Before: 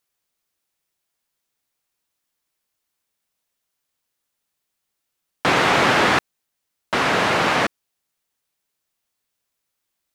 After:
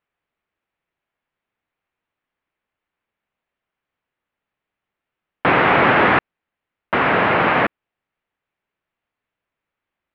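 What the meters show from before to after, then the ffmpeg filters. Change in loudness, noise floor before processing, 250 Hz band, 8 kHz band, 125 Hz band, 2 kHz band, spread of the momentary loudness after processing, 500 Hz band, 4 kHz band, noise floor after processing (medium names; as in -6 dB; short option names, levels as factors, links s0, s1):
+2.0 dB, -79 dBFS, +3.0 dB, under -25 dB, +3.0 dB, +2.5 dB, 9 LU, +3.0 dB, -5.5 dB, -85 dBFS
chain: -af "lowpass=f=2600:w=0.5412,lowpass=f=2600:w=1.3066,volume=1.41"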